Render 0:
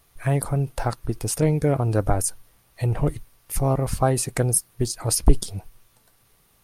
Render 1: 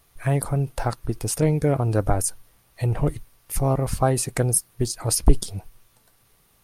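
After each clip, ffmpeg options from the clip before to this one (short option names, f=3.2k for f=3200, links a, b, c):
-af anull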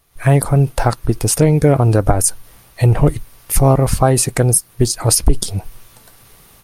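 -af "alimiter=limit=-11.5dB:level=0:latency=1:release=139,dynaudnorm=f=110:g=3:m=15dB"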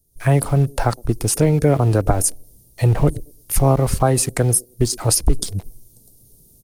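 -filter_complex "[0:a]acrossover=split=260|460|5400[a][b][c][d];[b]aecho=1:1:113|226|339:0.211|0.055|0.0143[e];[c]aeval=exprs='val(0)*gte(abs(val(0)),0.02)':c=same[f];[a][e][f][d]amix=inputs=4:normalize=0,volume=-3.5dB"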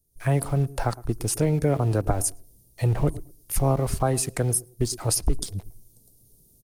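-filter_complex "[0:a]asplit=2[a][b];[b]adelay=110,lowpass=f=1.1k:p=1,volume=-19dB,asplit=2[c][d];[d]adelay=110,lowpass=f=1.1k:p=1,volume=0.22[e];[a][c][e]amix=inputs=3:normalize=0,volume=-7dB"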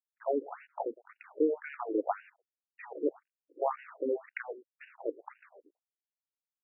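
-af "aeval=exprs='sgn(val(0))*max(abs(val(0))-0.00944,0)':c=same,acrusher=bits=7:mode=log:mix=0:aa=0.000001,afftfilt=real='re*between(b*sr/1024,360*pow(2100/360,0.5+0.5*sin(2*PI*1.9*pts/sr))/1.41,360*pow(2100/360,0.5+0.5*sin(2*PI*1.9*pts/sr))*1.41)':imag='im*between(b*sr/1024,360*pow(2100/360,0.5+0.5*sin(2*PI*1.9*pts/sr))/1.41,360*pow(2100/360,0.5+0.5*sin(2*PI*1.9*pts/sr))*1.41)':win_size=1024:overlap=0.75"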